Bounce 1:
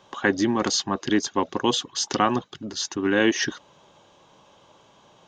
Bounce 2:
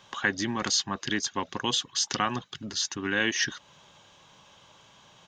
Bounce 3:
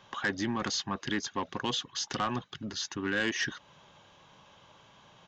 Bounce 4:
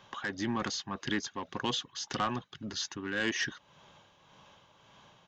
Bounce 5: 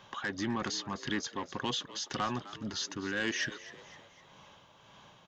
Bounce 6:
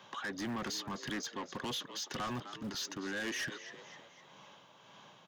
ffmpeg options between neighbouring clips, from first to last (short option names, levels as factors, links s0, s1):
-filter_complex "[0:a]firequalizer=gain_entry='entry(140,0);entry(320,-8);entry(1700,3)':delay=0.05:min_phase=1,asplit=2[s0][s1];[s1]acompressor=threshold=0.0224:ratio=6,volume=1.12[s2];[s0][s2]amix=inputs=2:normalize=0,volume=0.501"
-af "highshelf=f=4500:g=-11.5,aresample=16000,asoftclip=type=tanh:threshold=0.0841,aresample=44100"
-af "tremolo=f=1.8:d=0.47"
-filter_complex "[0:a]asplit=2[s0][s1];[s1]alimiter=level_in=2.11:limit=0.0631:level=0:latency=1:release=60,volume=0.473,volume=1.33[s2];[s0][s2]amix=inputs=2:normalize=0,asplit=5[s3][s4][s5][s6][s7];[s4]adelay=255,afreqshift=77,volume=0.158[s8];[s5]adelay=510,afreqshift=154,volume=0.0759[s9];[s6]adelay=765,afreqshift=231,volume=0.0363[s10];[s7]adelay=1020,afreqshift=308,volume=0.0176[s11];[s3][s8][s9][s10][s11]amix=inputs=5:normalize=0,volume=0.531"
-filter_complex "[0:a]acrossover=split=120|580|2300[s0][s1][s2][s3];[s0]acrusher=bits=7:mix=0:aa=0.000001[s4];[s4][s1][s2][s3]amix=inputs=4:normalize=0,asoftclip=type=tanh:threshold=0.0211"